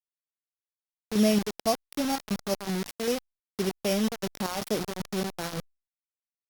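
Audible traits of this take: a buzz of ramps at a fixed pitch in blocks of 8 samples; chopped level 2.6 Hz, depth 60%, duty 60%; a quantiser's noise floor 6-bit, dither none; Opus

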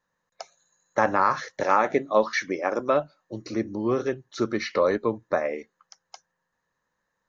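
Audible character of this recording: noise floor -80 dBFS; spectral tilt -4.0 dB/oct

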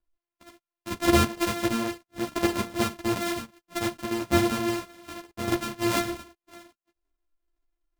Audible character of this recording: a buzz of ramps at a fixed pitch in blocks of 128 samples; chopped level 0.73 Hz, depth 65%, duty 90%; a shimmering, thickened sound

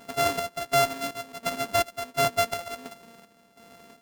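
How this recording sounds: a buzz of ramps at a fixed pitch in blocks of 64 samples; chopped level 1.4 Hz, depth 65%, duty 55%

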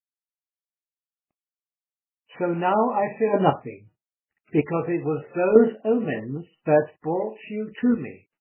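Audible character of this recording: a quantiser's noise floor 12-bit, dither none; chopped level 0.9 Hz, depth 60%, duty 15%; MP3

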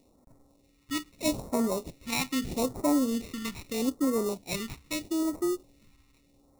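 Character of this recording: aliases and images of a low sample rate 1600 Hz, jitter 0%; phasing stages 2, 0.79 Hz, lowest notch 560–2800 Hz

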